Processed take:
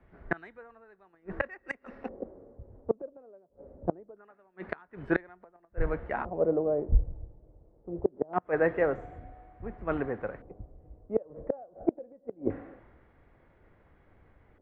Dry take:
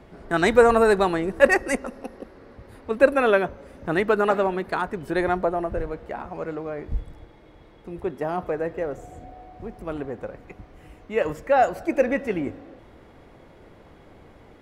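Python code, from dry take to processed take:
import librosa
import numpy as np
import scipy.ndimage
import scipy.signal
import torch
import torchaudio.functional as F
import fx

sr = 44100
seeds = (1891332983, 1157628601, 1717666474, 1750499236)

y = fx.filter_lfo_lowpass(x, sr, shape='square', hz=0.24, low_hz=580.0, high_hz=1800.0, q=1.8)
y = fx.gate_flip(y, sr, shuts_db=-14.0, range_db=-29)
y = fx.band_widen(y, sr, depth_pct=70)
y = y * librosa.db_to_amplitude(-1.5)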